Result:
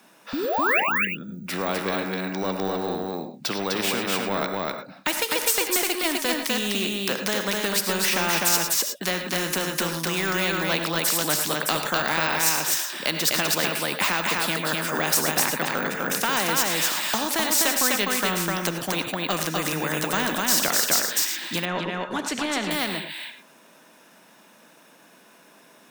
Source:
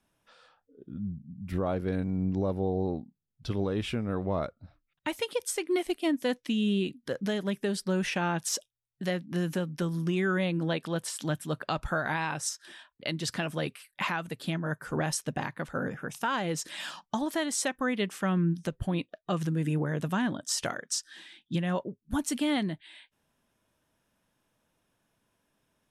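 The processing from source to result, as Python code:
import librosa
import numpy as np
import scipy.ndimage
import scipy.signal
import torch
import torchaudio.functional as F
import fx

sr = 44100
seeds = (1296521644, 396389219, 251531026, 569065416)

p1 = scipy.signal.sosfilt(scipy.signal.butter(6, 170.0, 'highpass', fs=sr, output='sos'), x)
p2 = fx.low_shelf(p1, sr, hz=350.0, db=-5.5)
p3 = fx.notch(p2, sr, hz=3200.0, q=13.0)
p4 = np.clip(10.0 ** (26.5 / 20.0) * p3, -1.0, 1.0) / 10.0 ** (26.5 / 20.0)
p5 = p3 + (p4 * 10.0 ** (-10.0 / 20.0))
p6 = fx.spec_paint(p5, sr, seeds[0], shape='rise', start_s=0.33, length_s=0.47, low_hz=250.0, high_hz=2900.0, level_db=-23.0)
p7 = p6 + fx.echo_single(p6, sr, ms=252, db=-3.5, dry=0)
p8 = fx.rev_gated(p7, sr, seeds[1], gate_ms=130, shape='rising', drr_db=10.5)
p9 = np.repeat(scipy.signal.resample_poly(p8, 1, 2), 2)[:len(p8)]
p10 = fx.spacing_loss(p9, sr, db_at_10k=22, at=(21.65, 22.71))
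p11 = fx.spectral_comp(p10, sr, ratio=2.0)
y = p11 * 10.0 ** (7.5 / 20.0)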